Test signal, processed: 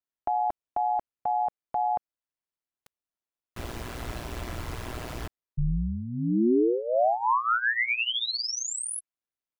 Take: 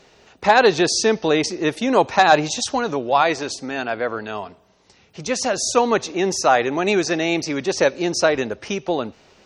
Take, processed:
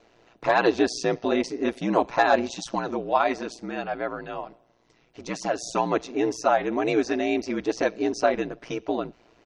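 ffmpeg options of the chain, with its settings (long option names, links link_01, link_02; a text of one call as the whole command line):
ffmpeg -i in.wav -af "highshelf=frequency=3100:gain=-10.5,aecho=1:1:3:0.67,aeval=exprs='val(0)*sin(2*PI*59*n/s)':channel_layout=same,volume=-3.5dB" out.wav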